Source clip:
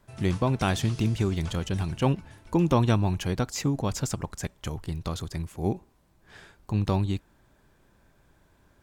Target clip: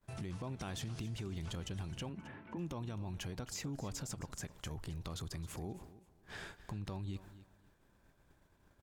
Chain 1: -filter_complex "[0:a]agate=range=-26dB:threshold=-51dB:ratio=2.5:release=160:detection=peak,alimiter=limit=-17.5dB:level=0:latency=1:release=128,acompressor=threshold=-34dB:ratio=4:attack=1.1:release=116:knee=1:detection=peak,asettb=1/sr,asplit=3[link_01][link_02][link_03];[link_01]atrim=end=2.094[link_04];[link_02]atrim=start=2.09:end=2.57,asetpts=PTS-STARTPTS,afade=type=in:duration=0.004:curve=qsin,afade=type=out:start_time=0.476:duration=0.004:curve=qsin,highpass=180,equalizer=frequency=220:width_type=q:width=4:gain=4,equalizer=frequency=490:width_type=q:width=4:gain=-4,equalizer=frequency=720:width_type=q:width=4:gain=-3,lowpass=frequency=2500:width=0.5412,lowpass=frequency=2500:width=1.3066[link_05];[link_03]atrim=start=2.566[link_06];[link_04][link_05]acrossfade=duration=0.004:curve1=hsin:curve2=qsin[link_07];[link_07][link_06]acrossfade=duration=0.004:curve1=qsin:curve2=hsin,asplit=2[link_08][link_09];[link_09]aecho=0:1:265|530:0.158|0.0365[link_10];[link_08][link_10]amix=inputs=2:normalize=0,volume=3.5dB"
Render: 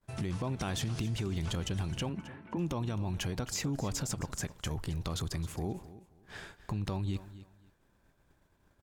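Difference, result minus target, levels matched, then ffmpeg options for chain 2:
downward compressor: peak gain reduction −8 dB
-filter_complex "[0:a]agate=range=-26dB:threshold=-51dB:ratio=2.5:release=160:detection=peak,alimiter=limit=-17.5dB:level=0:latency=1:release=128,acompressor=threshold=-44.5dB:ratio=4:attack=1.1:release=116:knee=1:detection=peak,asettb=1/sr,asplit=3[link_01][link_02][link_03];[link_01]atrim=end=2.094[link_04];[link_02]atrim=start=2.09:end=2.57,asetpts=PTS-STARTPTS,afade=type=in:duration=0.004:curve=qsin,afade=type=out:start_time=0.476:duration=0.004:curve=qsin,highpass=180,equalizer=frequency=220:width_type=q:width=4:gain=4,equalizer=frequency=490:width_type=q:width=4:gain=-4,equalizer=frequency=720:width_type=q:width=4:gain=-3,lowpass=frequency=2500:width=0.5412,lowpass=frequency=2500:width=1.3066[link_05];[link_03]atrim=start=2.566[link_06];[link_04][link_05]acrossfade=duration=0.004:curve1=hsin:curve2=qsin[link_07];[link_07][link_06]acrossfade=duration=0.004:curve1=qsin:curve2=hsin,asplit=2[link_08][link_09];[link_09]aecho=0:1:265|530:0.158|0.0365[link_10];[link_08][link_10]amix=inputs=2:normalize=0,volume=3.5dB"

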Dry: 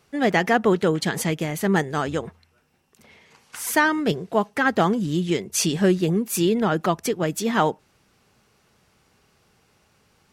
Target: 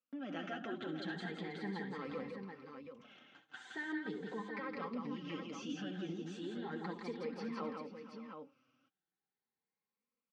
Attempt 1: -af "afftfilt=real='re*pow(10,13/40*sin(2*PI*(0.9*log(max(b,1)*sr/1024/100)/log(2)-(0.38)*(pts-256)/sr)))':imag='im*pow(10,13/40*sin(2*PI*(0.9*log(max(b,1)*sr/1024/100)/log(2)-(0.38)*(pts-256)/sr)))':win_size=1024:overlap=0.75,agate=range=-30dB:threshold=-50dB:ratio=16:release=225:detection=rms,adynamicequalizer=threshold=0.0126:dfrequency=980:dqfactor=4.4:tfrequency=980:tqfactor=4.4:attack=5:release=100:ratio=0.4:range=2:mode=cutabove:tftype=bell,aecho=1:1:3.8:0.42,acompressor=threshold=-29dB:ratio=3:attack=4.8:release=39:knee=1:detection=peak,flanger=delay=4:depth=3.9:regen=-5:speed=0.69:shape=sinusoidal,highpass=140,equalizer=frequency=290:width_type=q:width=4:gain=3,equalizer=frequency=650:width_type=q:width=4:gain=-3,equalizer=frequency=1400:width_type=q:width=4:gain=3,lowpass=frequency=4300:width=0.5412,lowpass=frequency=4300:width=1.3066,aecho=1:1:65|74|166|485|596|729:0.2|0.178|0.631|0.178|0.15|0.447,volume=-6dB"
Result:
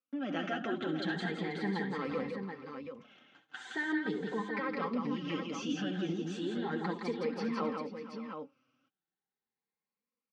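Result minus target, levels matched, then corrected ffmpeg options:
downward compressor: peak gain reduction −7.5 dB
-af "afftfilt=real='re*pow(10,13/40*sin(2*PI*(0.9*log(max(b,1)*sr/1024/100)/log(2)-(0.38)*(pts-256)/sr)))':imag='im*pow(10,13/40*sin(2*PI*(0.9*log(max(b,1)*sr/1024/100)/log(2)-(0.38)*(pts-256)/sr)))':win_size=1024:overlap=0.75,agate=range=-30dB:threshold=-50dB:ratio=16:release=225:detection=rms,adynamicequalizer=threshold=0.0126:dfrequency=980:dqfactor=4.4:tfrequency=980:tqfactor=4.4:attack=5:release=100:ratio=0.4:range=2:mode=cutabove:tftype=bell,aecho=1:1:3.8:0.42,acompressor=threshold=-40dB:ratio=3:attack=4.8:release=39:knee=1:detection=peak,flanger=delay=4:depth=3.9:regen=-5:speed=0.69:shape=sinusoidal,highpass=140,equalizer=frequency=290:width_type=q:width=4:gain=3,equalizer=frequency=650:width_type=q:width=4:gain=-3,equalizer=frequency=1400:width_type=q:width=4:gain=3,lowpass=frequency=4300:width=0.5412,lowpass=frequency=4300:width=1.3066,aecho=1:1:65|74|166|485|596|729:0.2|0.178|0.631|0.178|0.15|0.447,volume=-6dB"

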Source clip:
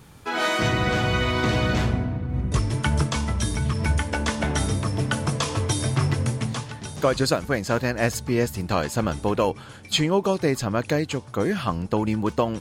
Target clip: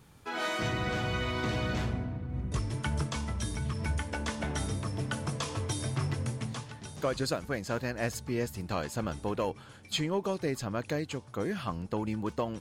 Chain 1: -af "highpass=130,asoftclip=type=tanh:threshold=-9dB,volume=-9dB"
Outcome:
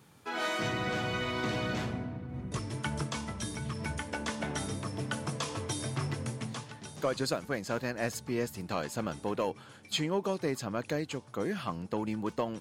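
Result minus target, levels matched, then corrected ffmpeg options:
125 Hz band −3.0 dB
-af "asoftclip=type=tanh:threshold=-9dB,volume=-9dB"

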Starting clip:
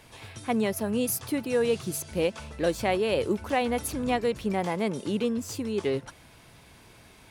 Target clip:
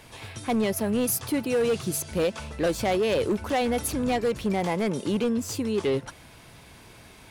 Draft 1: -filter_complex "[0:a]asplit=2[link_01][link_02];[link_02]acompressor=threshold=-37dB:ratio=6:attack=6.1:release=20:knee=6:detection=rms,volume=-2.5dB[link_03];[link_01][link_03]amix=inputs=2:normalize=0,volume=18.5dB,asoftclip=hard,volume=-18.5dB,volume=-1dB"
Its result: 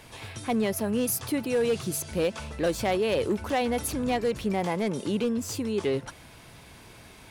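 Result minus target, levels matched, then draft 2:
downward compressor: peak gain reduction +10 dB
-filter_complex "[0:a]asplit=2[link_01][link_02];[link_02]acompressor=threshold=-25dB:ratio=6:attack=6.1:release=20:knee=6:detection=rms,volume=-2.5dB[link_03];[link_01][link_03]amix=inputs=2:normalize=0,volume=18.5dB,asoftclip=hard,volume=-18.5dB,volume=-1dB"

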